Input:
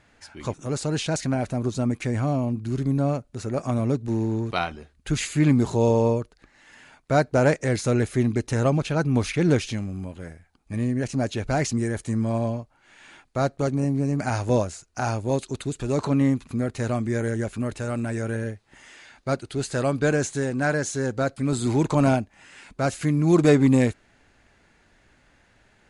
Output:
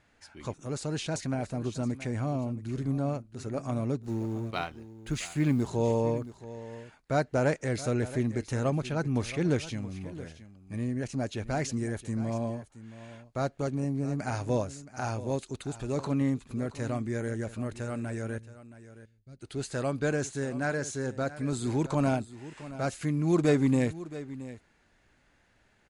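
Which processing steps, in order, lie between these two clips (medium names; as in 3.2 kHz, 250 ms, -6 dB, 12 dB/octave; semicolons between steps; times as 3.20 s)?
4.03–5.68 s: companding laws mixed up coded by A; 18.38–19.41 s: amplifier tone stack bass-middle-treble 10-0-1; on a send: delay 672 ms -15.5 dB; on the sum: trim -7 dB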